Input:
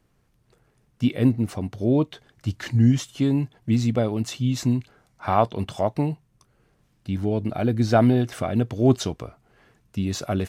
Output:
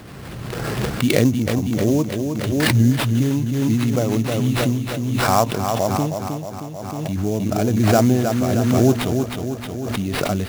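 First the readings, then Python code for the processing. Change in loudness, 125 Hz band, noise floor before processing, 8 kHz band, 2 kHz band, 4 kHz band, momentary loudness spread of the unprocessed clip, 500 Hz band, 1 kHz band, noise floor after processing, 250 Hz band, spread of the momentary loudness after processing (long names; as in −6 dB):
+3.5 dB, +4.0 dB, −66 dBFS, +9.5 dB, +10.0 dB, +8.0 dB, 12 LU, +4.5 dB, +5.0 dB, −32 dBFS, +4.0 dB, 11 LU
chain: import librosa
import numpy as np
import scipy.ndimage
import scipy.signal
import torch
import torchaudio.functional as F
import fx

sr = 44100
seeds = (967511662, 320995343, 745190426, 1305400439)

p1 = scipy.signal.sosfilt(scipy.signal.butter(2, 76.0, 'highpass', fs=sr, output='sos'), x)
p2 = fx.notch(p1, sr, hz=900.0, q=28.0)
p3 = fx.sample_hold(p2, sr, seeds[0], rate_hz=6500.0, jitter_pct=20)
p4 = p3 + fx.echo_feedback(p3, sr, ms=313, feedback_pct=55, wet_db=-6, dry=0)
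p5 = fx.pre_swell(p4, sr, db_per_s=24.0)
y = p5 * 10.0 ** (1.0 / 20.0)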